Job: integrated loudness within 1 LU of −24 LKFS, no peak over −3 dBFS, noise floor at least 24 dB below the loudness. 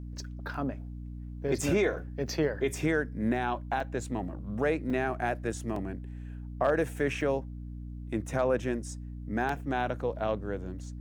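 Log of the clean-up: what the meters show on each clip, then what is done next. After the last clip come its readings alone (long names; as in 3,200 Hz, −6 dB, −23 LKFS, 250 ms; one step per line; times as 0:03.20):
number of dropouts 7; longest dropout 3.2 ms; mains hum 60 Hz; hum harmonics up to 300 Hz; level of the hum −38 dBFS; integrated loudness −31.5 LKFS; sample peak −16.0 dBFS; target loudness −24.0 LKFS
→ repair the gap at 0:00.54/0:01.61/0:03.80/0:04.90/0:05.76/0:07.21/0:09.49, 3.2 ms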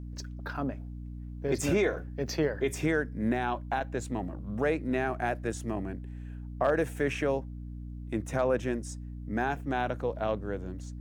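number of dropouts 0; mains hum 60 Hz; hum harmonics up to 300 Hz; level of the hum −38 dBFS
→ hum removal 60 Hz, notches 5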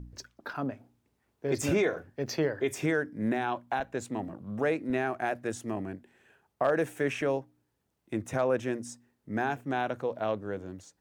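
mains hum none found; integrated loudness −32.0 LKFS; sample peak −16.5 dBFS; target loudness −24.0 LKFS
→ level +8 dB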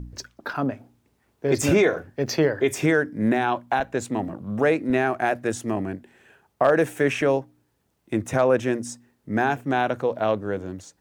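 integrated loudness −24.0 LKFS; sample peak −8.5 dBFS; background noise floor −70 dBFS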